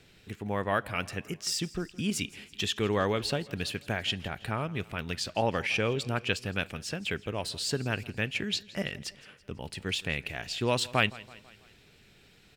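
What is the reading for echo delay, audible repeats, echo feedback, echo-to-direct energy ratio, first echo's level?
165 ms, 3, 53%, −19.0 dB, −20.5 dB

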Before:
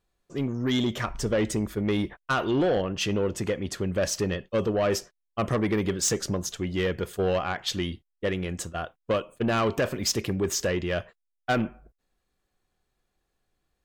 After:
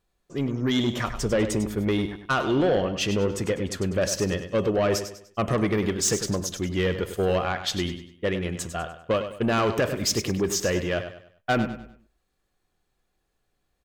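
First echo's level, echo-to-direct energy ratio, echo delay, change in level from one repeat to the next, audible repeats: −10.0 dB, −9.5 dB, 99 ms, −9.0 dB, 3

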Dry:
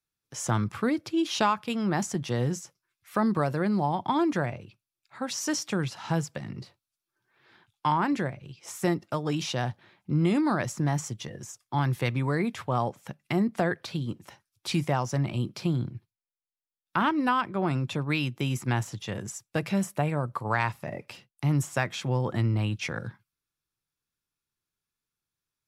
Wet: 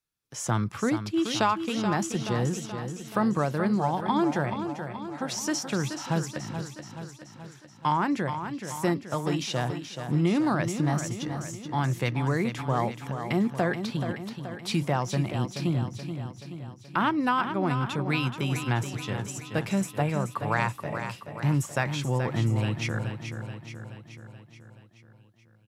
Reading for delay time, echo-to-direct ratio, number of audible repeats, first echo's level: 428 ms, −6.5 dB, 6, −8.5 dB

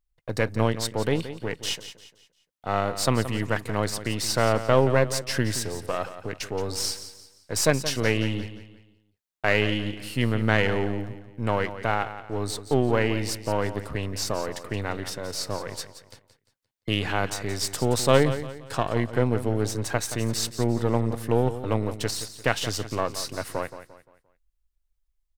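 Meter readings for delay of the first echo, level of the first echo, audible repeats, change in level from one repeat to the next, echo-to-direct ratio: 174 ms, −12.5 dB, 3, −8.5 dB, −12.0 dB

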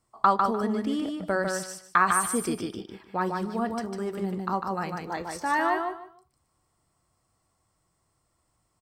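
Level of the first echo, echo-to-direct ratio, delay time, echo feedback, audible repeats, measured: −4.0 dB, −4.0 dB, 150 ms, 22%, 3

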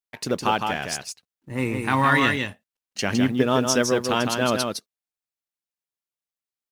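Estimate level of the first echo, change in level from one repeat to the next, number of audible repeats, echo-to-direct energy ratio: −5.0 dB, repeats not evenly spaced, 1, −5.0 dB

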